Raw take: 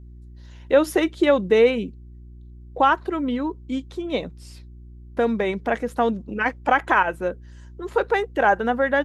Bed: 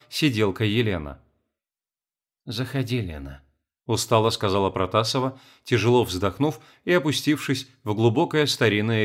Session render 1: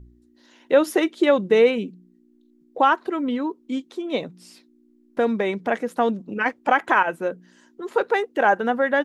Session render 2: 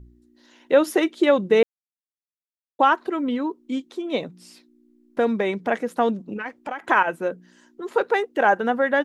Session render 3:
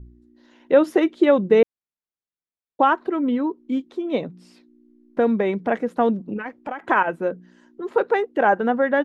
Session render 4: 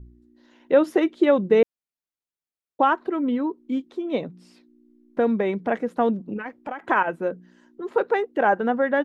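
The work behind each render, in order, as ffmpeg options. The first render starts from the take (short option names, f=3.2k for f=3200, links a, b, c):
-af "bandreject=f=60:t=h:w=4,bandreject=f=120:t=h:w=4,bandreject=f=180:t=h:w=4"
-filter_complex "[0:a]asettb=1/sr,asplit=3[a][b][c];[a]atrim=end=6.364[d];[b]atrim=start=6.36:end=6.88,asetpts=PTS-STARTPTS,afade=t=in:d=0.004:c=qsin,afade=t=out:st=0.516:d=0.004:c=qsin,acompressor=threshold=-28dB:ratio=4:attack=3.2:release=140:knee=1:detection=peak[e];[c]atrim=start=6.876[f];[d][e]acrossfade=d=0.004:c1=hsin:c2=qsin[g];[g][f]acrossfade=d=0.004:c1=qsin:c2=hsin,asplit=3[h][i][j];[h]atrim=end=1.63,asetpts=PTS-STARTPTS,afade=t=out:st=1.626:d=0.004:c=hsin[k];[i]atrim=start=1.63:end=2.79,asetpts=PTS-STARTPTS,volume=0[l];[j]atrim=start=2.79,asetpts=PTS-STARTPTS,afade=t=in:d=0.004:c=hsin[m];[k][l][m]concat=n=3:v=0:a=1"
-af "lowpass=f=2.2k:p=1,lowshelf=f=420:g=4.5"
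-af "volume=-2dB"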